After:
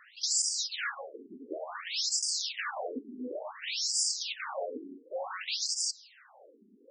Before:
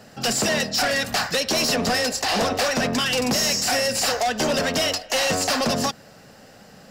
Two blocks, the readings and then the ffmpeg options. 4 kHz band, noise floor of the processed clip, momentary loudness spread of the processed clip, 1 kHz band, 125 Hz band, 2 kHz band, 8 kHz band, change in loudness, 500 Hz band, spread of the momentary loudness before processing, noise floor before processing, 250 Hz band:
-10.0 dB, -60 dBFS, 14 LU, -17.0 dB, under -35 dB, -15.0 dB, -6.5 dB, -10.5 dB, -16.5 dB, 3 LU, -48 dBFS, -19.0 dB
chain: -filter_complex "[0:a]lowshelf=f=480:g=-5.5,acrossover=split=4000[s0][s1];[s1]acompressor=threshold=0.0355:ratio=4:attack=1:release=60[s2];[s0][s2]amix=inputs=2:normalize=0,aeval=exprs='0.168*(cos(1*acos(clip(val(0)/0.168,-1,1)))-cos(1*PI/2))+0.0531*(cos(4*acos(clip(val(0)/0.168,-1,1)))-cos(4*PI/2))+0.0473*(cos(5*acos(clip(val(0)/0.168,-1,1)))-cos(5*PI/2))':c=same,aemphasis=mode=production:type=cd,afftfilt=real='re*between(b*sr/1024,290*pow(6700/290,0.5+0.5*sin(2*PI*0.56*pts/sr))/1.41,290*pow(6700/290,0.5+0.5*sin(2*PI*0.56*pts/sr))*1.41)':imag='im*between(b*sr/1024,290*pow(6700/290,0.5+0.5*sin(2*PI*0.56*pts/sr))/1.41,290*pow(6700/290,0.5+0.5*sin(2*PI*0.56*pts/sr))*1.41)':win_size=1024:overlap=0.75,volume=0.376"

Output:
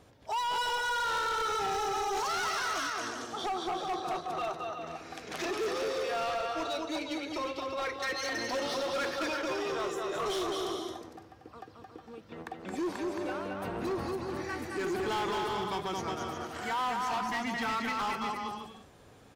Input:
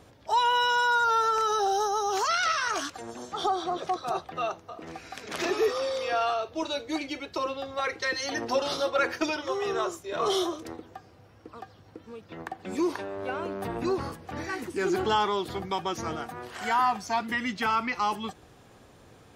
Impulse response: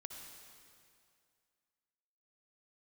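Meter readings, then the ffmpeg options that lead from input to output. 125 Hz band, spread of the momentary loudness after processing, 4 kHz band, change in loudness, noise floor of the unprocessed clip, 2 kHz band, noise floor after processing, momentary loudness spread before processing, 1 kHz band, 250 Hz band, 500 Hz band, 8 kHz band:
-3.0 dB, 11 LU, -4.0 dB, -5.0 dB, -55 dBFS, -4.5 dB, -55 dBFS, 16 LU, -5.5 dB, -3.5 dB, -4.5 dB, -3.0 dB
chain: -filter_complex "[0:a]asplit=2[s0][s1];[s1]aecho=0:1:220|363|456|516.4|555.6:0.631|0.398|0.251|0.158|0.1[s2];[s0][s2]amix=inputs=2:normalize=0,asoftclip=type=hard:threshold=0.0596,volume=0.596"

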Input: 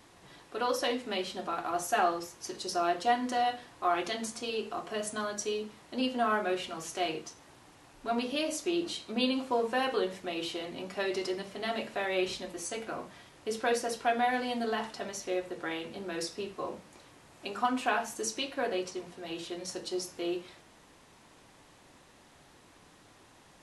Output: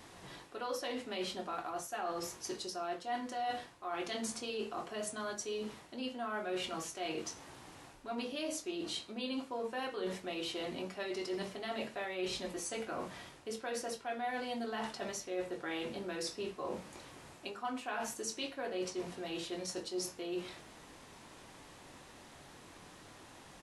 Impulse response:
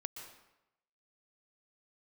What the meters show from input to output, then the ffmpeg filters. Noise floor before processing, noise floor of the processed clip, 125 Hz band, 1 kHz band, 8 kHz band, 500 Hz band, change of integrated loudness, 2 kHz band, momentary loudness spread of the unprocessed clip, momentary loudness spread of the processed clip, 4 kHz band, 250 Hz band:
-59 dBFS, -56 dBFS, -2.0 dB, -8.5 dB, -3.5 dB, -6.5 dB, -6.5 dB, -7.5 dB, 11 LU, 16 LU, -5.0 dB, -6.0 dB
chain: -filter_complex "[0:a]areverse,acompressor=threshold=0.01:ratio=6,areverse,asplit=2[s0][s1];[s1]adelay=22,volume=0.299[s2];[s0][s2]amix=inputs=2:normalize=0,volume=1.41"

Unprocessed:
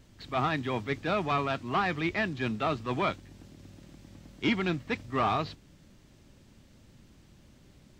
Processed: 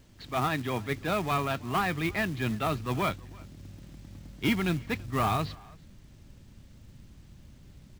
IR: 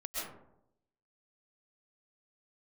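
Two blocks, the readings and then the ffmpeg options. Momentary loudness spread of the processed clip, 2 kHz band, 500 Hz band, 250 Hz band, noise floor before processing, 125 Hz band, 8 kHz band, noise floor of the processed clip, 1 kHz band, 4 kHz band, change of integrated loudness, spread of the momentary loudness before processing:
20 LU, 0.0 dB, -1.0 dB, +1.0 dB, -58 dBFS, +3.5 dB, +9.5 dB, -54 dBFS, -0.5 dB, +0.5 dB, +0.5 dB, 4 LU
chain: -filter_complex "[0:a]asplit=2[s0][s1];[s1]adelay=330,highpass=300,lowpass=3400,asoftclip=type=hard:threshold=0.0473,volume=0.0794[s2];[s0][s2]amix=inputs=2:normalize=0,acrusher=bits=4:mode=log:mix=0:aa=0.000001,asubboost=boost=2:cutoff=210"

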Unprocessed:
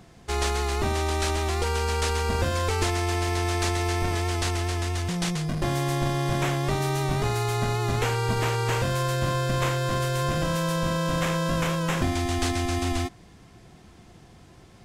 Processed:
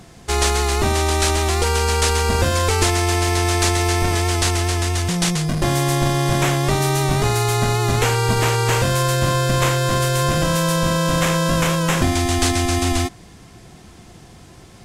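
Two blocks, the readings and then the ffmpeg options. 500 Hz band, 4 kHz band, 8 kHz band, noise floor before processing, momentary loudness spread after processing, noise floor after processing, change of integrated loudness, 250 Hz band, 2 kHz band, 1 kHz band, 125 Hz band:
+7.0 dB, +9.0 dB, +11.5 dB, -51 dBFS, 2 LU, -44 dBFS, +7.5 dB, +7.0 dB, +7.5 dB, +7.0 dB, +7.0 dB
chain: -af "equalizer=f=9900:t=o:w=1.8:g=5.5,volume=2.24"

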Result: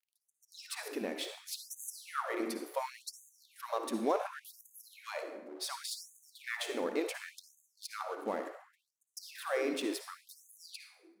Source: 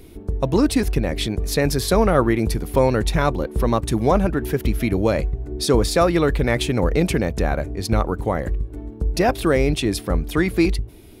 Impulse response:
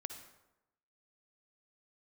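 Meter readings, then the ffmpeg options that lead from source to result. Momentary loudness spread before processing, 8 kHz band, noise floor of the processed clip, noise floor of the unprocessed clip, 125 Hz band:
7 LU, -13.0 dB, -85 dBFS, -39 dBFS, under -40 dB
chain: -filter_complex "[0:a]aeval=exprs='sgn(val(0))*max(abs(val(0))-0.0158,0)':c=same[s0];[1:a]atrim=start_sample=2205[s1];[s0][s1]afir=irnorm=-1:irlink=0,afftfilt=real='re*gte(b*sr/1024,200*pow(6300/200,0.5+0.5*sin(2*PI*0.69*pts/sr)))':imag='im*gte(b*sr/1024,200*pow(6300/200,0.5+0.5*sin(2*PI*0.69*pts/sr)))':win_size=1024:overlap=0.75,volume=0.355"

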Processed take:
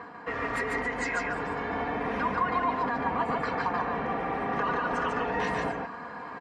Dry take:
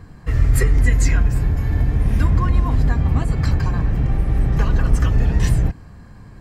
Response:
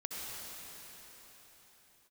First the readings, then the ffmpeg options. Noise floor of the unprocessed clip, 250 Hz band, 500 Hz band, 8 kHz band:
-42 dBFS, -8.5 dB, +0.5 dB, under -15 dB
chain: -filter_complex "[0:a]highpass=480,lowpass=2400,aecho=1:1:4.2:0.5,alimiter=level_in=1.19:limit=0.0631:level=0:latency=1:release=99,volume=0.841,areverse,acompressor=mode=upward:threshold=0.0126:ratio=2.5,areverse,equalizer=f=1000:w=2:g=6,asplit=2[s0][s1];[s1]aecho=0:1:145:0.708[s2];[s0][s2]amix=inputs=2:normalize=0,acontrast=26,volume=0.794" -ar 44100 -c:a libmp3lame -b:a 56k

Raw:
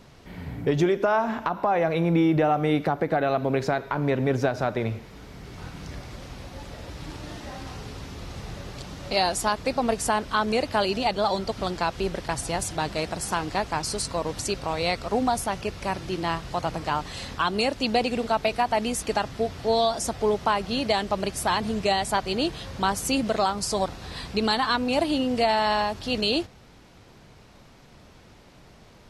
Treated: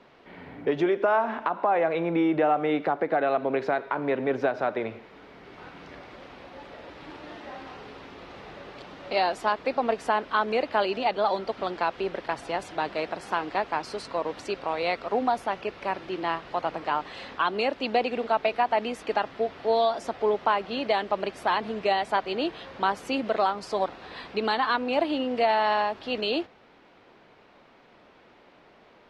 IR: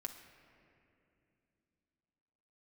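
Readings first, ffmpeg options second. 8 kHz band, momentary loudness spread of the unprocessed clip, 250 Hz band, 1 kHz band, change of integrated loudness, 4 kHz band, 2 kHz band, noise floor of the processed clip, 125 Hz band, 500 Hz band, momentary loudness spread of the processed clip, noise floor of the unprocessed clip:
under -15 dB, 16 LU, -4.5 dB, 0.0 dB, -1.5 dB, -5.5 dB, -0.5 dB, -56 dBFS, -13.0 dB, -0.5 dB, 19 LU, -51 dBFS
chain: -filter_complex "[0:a]acrossover=split=250 3600:gain=0.112 1 0.0708[s0][s1][s2];[s0][s1][s2]amix=inputs=3:normalize=0"

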